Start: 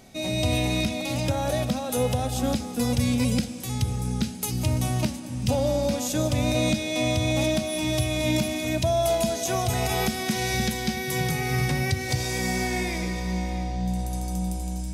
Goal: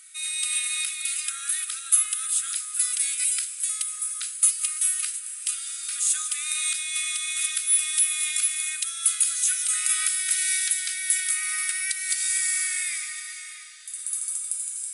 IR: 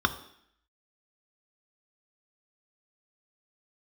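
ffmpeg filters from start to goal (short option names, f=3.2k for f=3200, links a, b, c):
-af "aexciter=amount=5.6:drive=9:freq=8.1k,afftfilt=real='re*between(b*sr/4096,1200,11000)':imag='im*between(b*sr/4096,1200,11000)':win_size=4096:overlap=0.75"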